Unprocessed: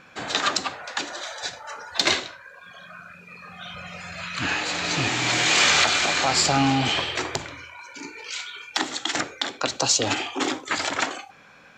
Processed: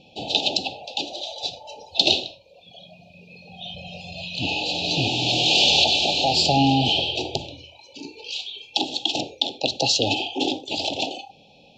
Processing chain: Chebyshev band-stop 850–2600 Hz, order 5; resonant high shelf 5900 Hz -12 dB, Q 1.5; gain +3 dB

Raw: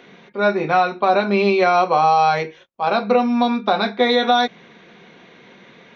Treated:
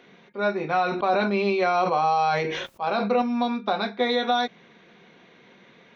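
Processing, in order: 0.82–3.22 sustainer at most 33 dB/s; gain -7 dB

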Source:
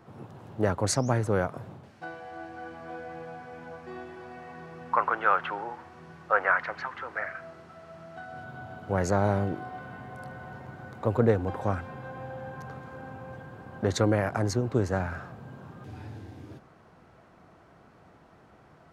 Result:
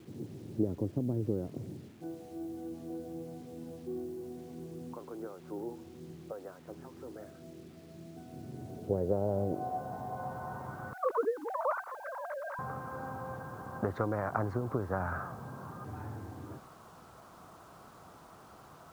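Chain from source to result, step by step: 10.93–12.59 sine-wave speech; compressor 12:1, threshold -28 dBFS, peak gain reduction 14.5 dB; low-pass sweep 330 Hz -> 1200 Hz, 8.41–10.79; requantised 10-bit, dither none; gain -1 dB

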